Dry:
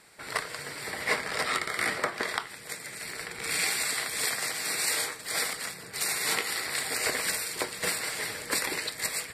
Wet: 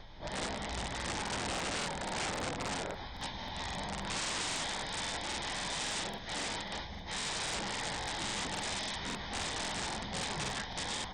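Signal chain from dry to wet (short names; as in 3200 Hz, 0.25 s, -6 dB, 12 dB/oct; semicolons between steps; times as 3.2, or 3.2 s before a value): HPF 91 Hz 24 dB/oct; low shelf 310 Hz +11 dB; limiter -22 dBFS, peak gain reduction 11 dB; vocal rider within 4 dB 2 s; hum 50 Hz, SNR 17 dB; plain phase-vocoder stretch 0.51×; wrapped overs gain 30 dB; speed mistake 78 rpm record played at 33 rpm; crackling interface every 0.27 s, samples 2048, repeat, from 0.96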